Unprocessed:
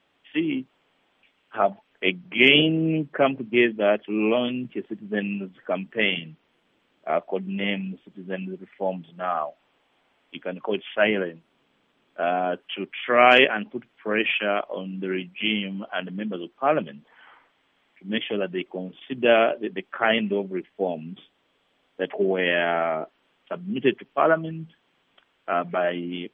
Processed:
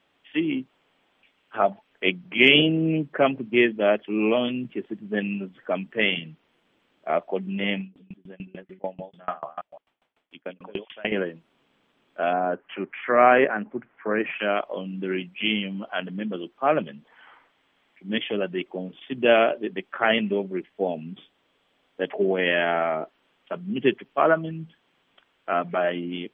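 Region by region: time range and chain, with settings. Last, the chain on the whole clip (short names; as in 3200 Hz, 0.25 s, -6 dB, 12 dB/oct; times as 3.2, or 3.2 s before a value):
7.81–11.12 reverse delay 0.164 s, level -3.5 dB + dB-ramp tremolo decaying 6.8 Hz, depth 30 dB
12.33–14.39 LPF 1800 Hz 24 dB/oct + mismatched tape noise reduction encoder only
whole clip: dry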